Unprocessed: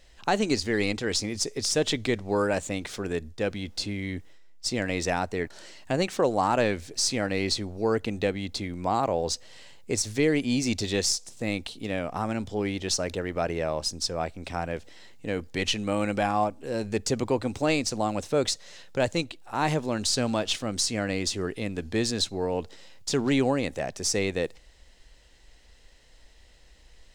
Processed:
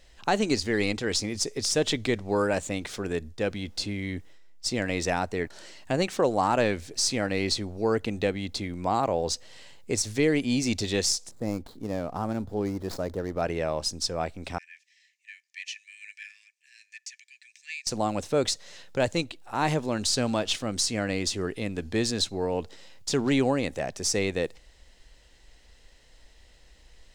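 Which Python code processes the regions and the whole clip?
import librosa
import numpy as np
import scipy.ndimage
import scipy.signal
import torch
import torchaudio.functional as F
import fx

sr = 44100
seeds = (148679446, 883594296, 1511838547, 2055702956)

y = fx.chain(x, sr, fx.median_filter(points=15),
    fx.peak_eq(hz=2400.0, db=-8.0, octaves=1.3), at=(11.31, 13.42))
y = fx.chain(y, sr, fx.cheby_ripple_highpass(hz=1700.0, ripple_db=9),
    fx.high_shelf(hz=4200.0, db=-11.5), at=(14.58, 17.87))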